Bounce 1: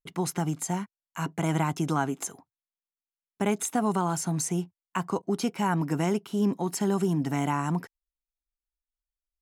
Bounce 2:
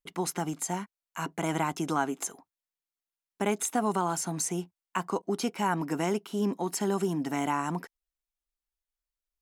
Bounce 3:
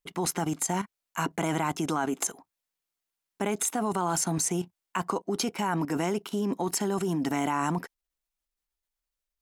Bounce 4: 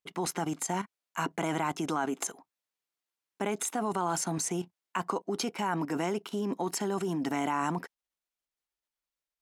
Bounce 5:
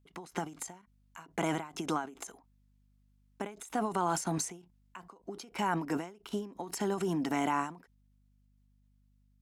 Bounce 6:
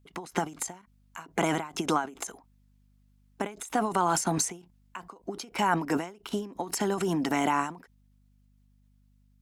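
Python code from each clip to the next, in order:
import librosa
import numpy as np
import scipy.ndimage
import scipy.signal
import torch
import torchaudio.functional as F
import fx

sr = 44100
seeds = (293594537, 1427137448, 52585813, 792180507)

y1 = fx.peak_eq(x, sr, hz=120.0, db=-14.0, octaves=0.95)
y2 = fx.level_steps(y1, sr, step_db=12)
y2 = y2 * 10.0 ** (8.5 / 20.0)
y3 = fx.highpass(y2, sr, hz=180.0, slope=6)
y3 = fx.high_shelf(y3, sr, hz=7700.0, db=-7.0)
y3 = y3 * 10.0 ** (-1.5 / 20.0)
y4 = fx.add_hum(y3, sr, base_hz=50, snr_db=34)
y4 = fx.end_taper(y4, sr, db_per_s=130.0)
y5 = fx.hpss(y4, sr, part='harmonic', gain_db=-4)
y5 = y5 * 10.0 ** (7.5 / 20.0)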